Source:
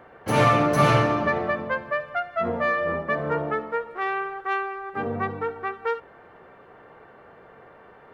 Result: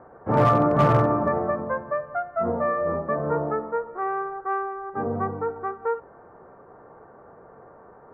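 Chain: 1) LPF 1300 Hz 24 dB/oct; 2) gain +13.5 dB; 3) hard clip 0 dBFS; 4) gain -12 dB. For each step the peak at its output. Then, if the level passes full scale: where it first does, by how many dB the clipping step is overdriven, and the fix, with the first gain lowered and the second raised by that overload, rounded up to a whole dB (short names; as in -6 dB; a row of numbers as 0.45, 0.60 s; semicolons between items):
-7.5, +6.0, 0.0, -12.0 dBFS; step 2, 6.0 dB; step 2 +7.5 dB, step 4 -6 dB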